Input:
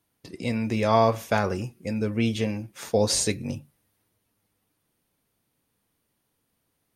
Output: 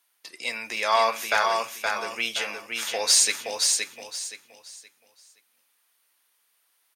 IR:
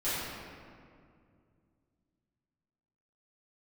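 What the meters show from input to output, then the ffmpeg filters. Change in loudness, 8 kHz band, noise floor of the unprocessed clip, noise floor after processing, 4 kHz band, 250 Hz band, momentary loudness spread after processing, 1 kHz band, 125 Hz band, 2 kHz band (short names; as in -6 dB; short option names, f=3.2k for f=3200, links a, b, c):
+1.5 dB, +8.5 dB, -76 dBFS, -70 dBFS, +8.5 dB, -19.5 dB, 15 LU, +2.5 dB, under -25 dB, +8.0 dB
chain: -filter_complex "[0:a]highpass=1.2k,asplit=2[a][b];[b]asoftclip=type=hard:threshold=-20.5dB,volume=-4dB[c];[a][c]amix=inputs=2:normalize=0,aecho=1:1:521|1042|1563|2084:0.631|0.177|0.0495|0.0139,volume=3dB"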